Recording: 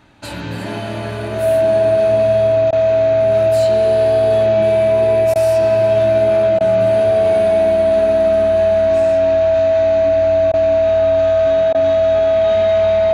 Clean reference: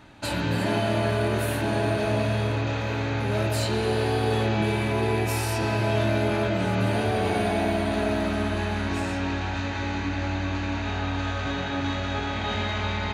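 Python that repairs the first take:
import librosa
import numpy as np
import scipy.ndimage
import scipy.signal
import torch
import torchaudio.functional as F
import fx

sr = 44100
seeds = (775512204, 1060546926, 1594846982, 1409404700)

y = fx.notch(x, sr, hz=650.0, q=30.0)
y = fx.fix_interpolate(y, sr, at_s=(2.71, 5.34, 6.59, 10.52, 11.73), length_ms=15.0)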